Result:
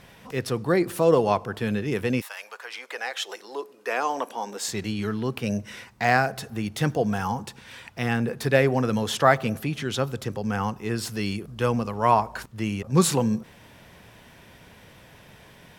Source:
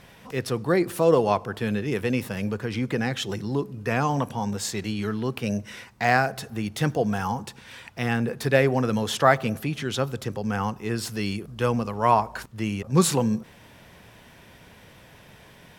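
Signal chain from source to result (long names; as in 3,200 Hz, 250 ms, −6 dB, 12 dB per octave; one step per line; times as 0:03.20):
0:02.20–0:04.67: high-pass filter 840 Hz → 280 Hz 24 dB per octave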